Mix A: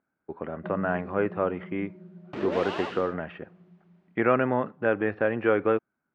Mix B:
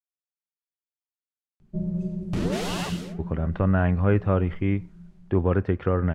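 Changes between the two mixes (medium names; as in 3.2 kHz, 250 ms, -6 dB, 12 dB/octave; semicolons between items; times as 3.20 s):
speech: entry +2.90 s; first sound: entry +1.10 s; master: remove band-pass 330–2500 Hz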